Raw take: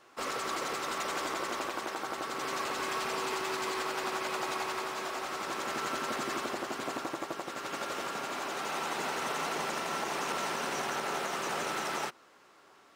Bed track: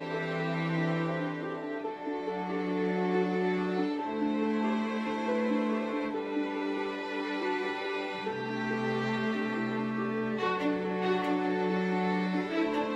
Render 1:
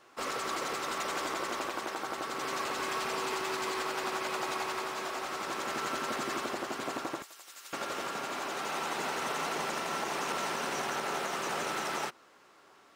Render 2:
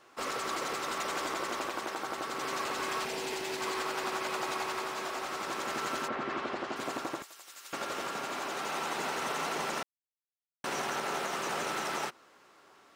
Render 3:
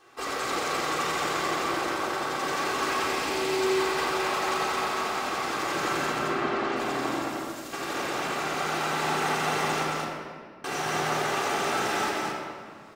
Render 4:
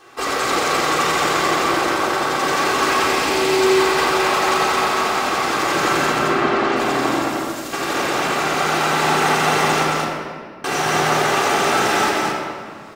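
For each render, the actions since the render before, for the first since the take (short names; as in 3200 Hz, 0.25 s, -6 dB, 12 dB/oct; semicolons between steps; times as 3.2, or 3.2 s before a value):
7.22–7.73 differentiator
3.05–3.61 bell 1200 Hz -11.5 dB 0.56 oct; 6.07–6.75 LPF 2100 Hz -> 4900 Hz; 9.83–10.64 mute
echo 0.218 s -3 dB; shoebox room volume 3600 m³, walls mixed, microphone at 3.7 m
gain +10 dB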